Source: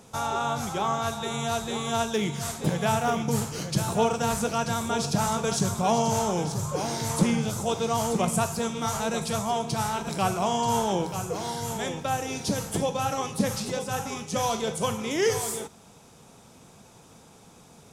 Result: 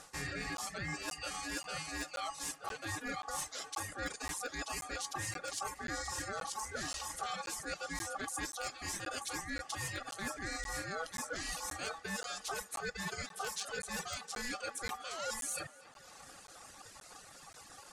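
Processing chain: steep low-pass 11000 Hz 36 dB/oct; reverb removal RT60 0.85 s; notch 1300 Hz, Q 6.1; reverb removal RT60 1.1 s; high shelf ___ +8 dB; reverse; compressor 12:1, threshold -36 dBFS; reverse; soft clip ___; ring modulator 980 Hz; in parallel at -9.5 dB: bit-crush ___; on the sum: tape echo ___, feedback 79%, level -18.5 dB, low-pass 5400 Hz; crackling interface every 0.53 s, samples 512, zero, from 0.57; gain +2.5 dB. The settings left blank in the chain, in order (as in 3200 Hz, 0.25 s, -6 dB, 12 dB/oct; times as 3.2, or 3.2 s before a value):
2000 Hz, -26.5 dBFS, 5-bit, 0.252 s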